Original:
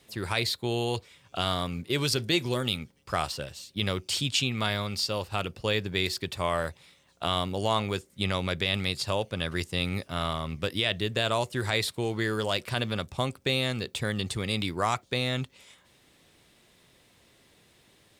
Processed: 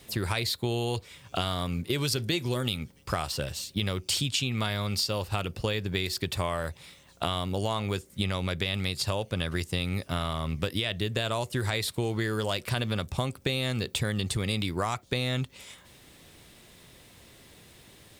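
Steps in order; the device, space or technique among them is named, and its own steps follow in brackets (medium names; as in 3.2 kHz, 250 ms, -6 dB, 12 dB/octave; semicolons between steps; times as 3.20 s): ASMR close-microphone chain (bass shelf 130 Hz +6.5 dB; compression 6:1, threshold -32 dBFS, peak gain reduction 11.5 dB; treble shelf 11 kHz +7.5 dB); trim +6 dB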